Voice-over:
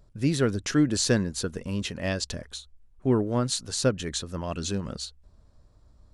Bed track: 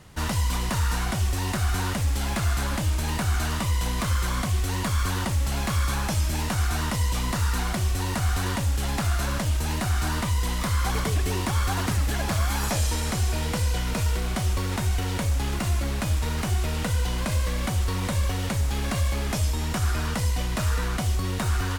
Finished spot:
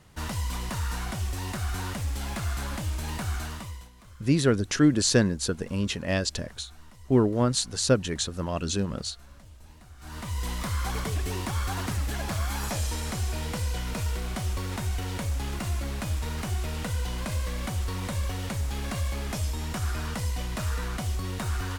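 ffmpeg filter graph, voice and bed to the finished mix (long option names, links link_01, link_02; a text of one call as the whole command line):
ffmpeg -i stem1.wav -i stem2.wav -filter_complex "[0:a]adelay=4050,volume=2dB[link_01];[1:a]volume=15.5dB,afade=type=out:start_time=3.3:duration=0.6:silence=0.0944061,afade=type=in:start_time=9.98:duration=0.48:silence=0.0841395[link_02];[link_01][link_02]amix=inputs=2:normalize=0" out.wav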